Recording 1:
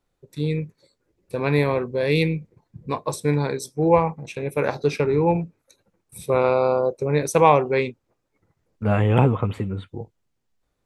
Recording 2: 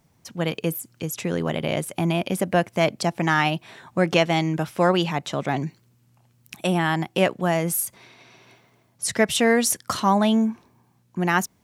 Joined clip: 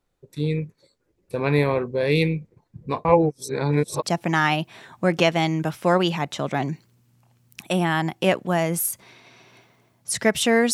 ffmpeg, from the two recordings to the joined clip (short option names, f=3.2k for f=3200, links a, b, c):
-filter_complex "[0:a]apad=whole_dur=10.73,atrim=end=10.73,asplit=2[a][b];[a]atrim=end=3.052[c];[b]atrim=start=3.048:end=4.032,asetpts=PTS-STARTPTS,areverse[d];[1:a]atrim=start=2.968:end=9.67[e];[c][d]acrossfade=d=0.004:c1=hsin:c2=hsin[f];[f][e]acrossfade=d=0.004:c1=hsin:c2=hsin"